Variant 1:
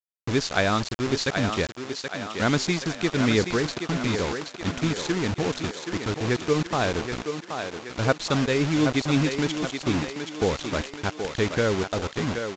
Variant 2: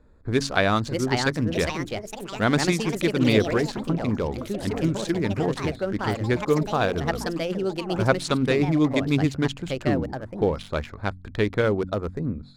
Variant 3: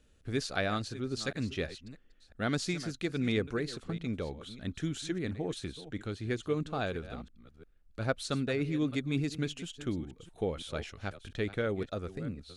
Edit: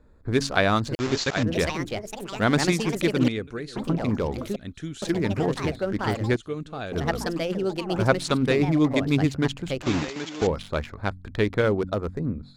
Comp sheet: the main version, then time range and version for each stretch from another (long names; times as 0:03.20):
2
0:00.95–0:01.43: punch in from 1
0:03.28–0:03.76: punch in from 3
0:04.56–0:05.02: punch in from 3
0:06.36–0:06.92: punch in from 3
0:09.83–0:10.47: punch in from 1